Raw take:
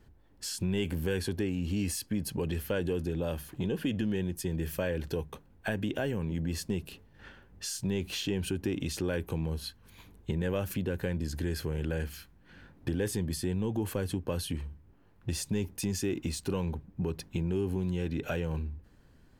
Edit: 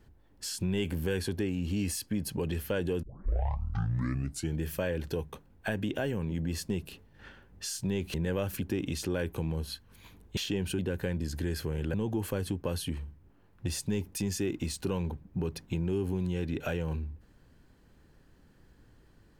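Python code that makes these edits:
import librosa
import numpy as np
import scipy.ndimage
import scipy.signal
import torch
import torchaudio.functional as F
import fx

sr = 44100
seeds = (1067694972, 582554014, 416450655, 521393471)

y = fx.edit(x, sr, fx.tape_start(start_s=3.03, length_s=1.6),
    fx.swap(start_s=8.14, length_s=0.42, other_s=10.31, other_length_s=0.48),
    fx.cut(start_s=11.94, length_s=1.63), tone=tone)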